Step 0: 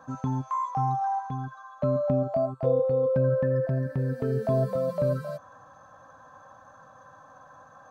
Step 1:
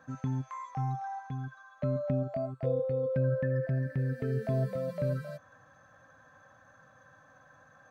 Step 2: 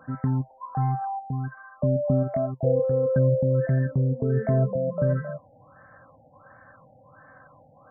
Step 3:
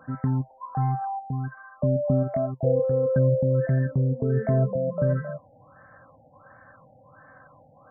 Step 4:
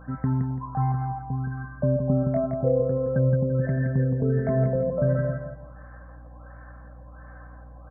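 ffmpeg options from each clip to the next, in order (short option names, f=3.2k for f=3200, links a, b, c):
-af "equalizer=f=125:t=o:w=1:g=3,equalizer=f=1k:t=o:w=1:g=-10,equalizer=f=2k:t=o:w=1:g=11,volume=-5.5dB"
-af "afftfilt=real='re*lt(b*sr/1024,900*pow(2300/900,0.5+0.5*sin(2*PI*1.4*pts/sr)))':imag='im*lt(b*sr/1024,900*pow(2300/900,0.5+0.5*sin(2*PI*1.4*pts/sr)))':win_size=1024:overlap=0.75,volume=8dB"
-af anull
-filter_complex "[0:a]aeval=exprs='val(0)+0.00562*(sin(2*PI*60*n/s)+sin(2*PI*2*60*n/s)/2+sin(2*PI*3*60*n/s)/3+sin(2*PI*4*60*n/s)/4+sin(2*PI*5*60*n/s)/5)':c=same,asplit=2[a][b];[b]aecho=0:1:169|338|507|676:0.562|0.152|0.041|0.0111[c];[a][c]amix=inputs=2:normalize=0"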